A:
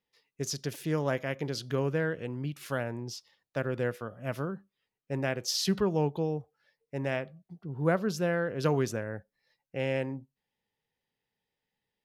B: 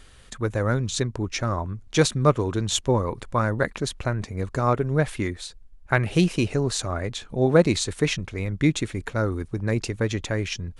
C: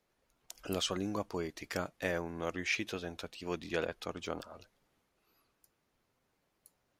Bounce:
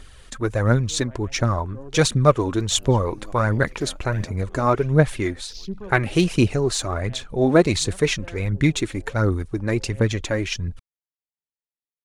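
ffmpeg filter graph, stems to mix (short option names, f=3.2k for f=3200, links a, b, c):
-filter_complex "[0:a]afwtdn=0.0178,volume=-8dB[a];[1:a]volume=2dB,asplit=2[b][c];[2:a]adelay=2100,volume=-8dB,afade=t=in:st=2.97:d=0.27:silence=0.398107,afade=t=out:st=4.09:d=0.64:silence=0.281838[d];[c]apad=whole_len=531050[e];[a][e]sidechaincompress=threshold=-32dB:ratio=8:attack=26:release=262[f];[f][b][d]amix=inputs=3:normalize=0,aphaser=in_gain=1:out_gain=1:delay=3.9:decay=0.44:speed=1.4:type=triangular"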